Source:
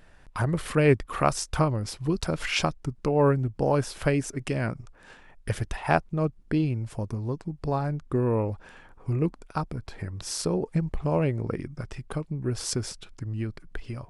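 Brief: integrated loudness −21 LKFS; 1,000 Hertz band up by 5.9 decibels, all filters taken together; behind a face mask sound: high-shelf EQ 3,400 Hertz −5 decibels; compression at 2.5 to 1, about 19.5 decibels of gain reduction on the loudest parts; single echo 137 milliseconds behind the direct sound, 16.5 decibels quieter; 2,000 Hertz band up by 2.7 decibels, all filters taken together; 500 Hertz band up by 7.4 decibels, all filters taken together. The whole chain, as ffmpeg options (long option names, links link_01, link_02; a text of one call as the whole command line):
ffmpeg -i in.wav -af "equalizer=frequency=500:width_type=o:gain=8,equalizer=frequency=1000:width_type=o:gain=4.5,equalizer=frequency=2000:width_type=o:gain=3,acompressor=threshold=-41dB:ratio=2.5,highshelf=frequency=3400:gain=-5,aecho=1:1:137:0.15,volume=18dB" out.wav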